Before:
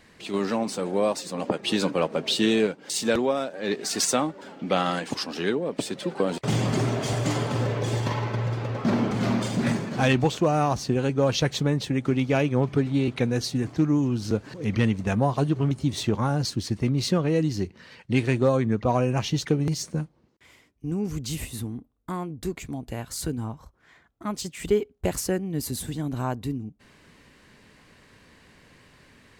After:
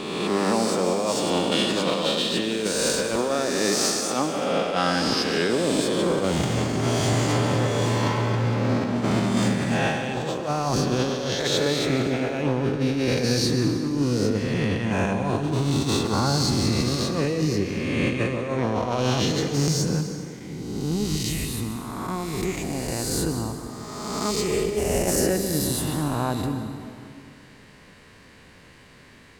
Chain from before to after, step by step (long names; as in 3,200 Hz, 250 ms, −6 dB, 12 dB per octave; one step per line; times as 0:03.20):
peak hold with a rise ahead of every peak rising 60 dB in 1.83 s
0:11.35–0:11.90: low shelf with overshoot 290 Hz −7.5 dB, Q 1.5
compressor whose output falls as the input rises −22 dBFS, ratio −0.5
on a send: convolution reverb RT60 2.2 s, pre-delay 118 ms, DRR 7 dB
on the sum: level −1 dB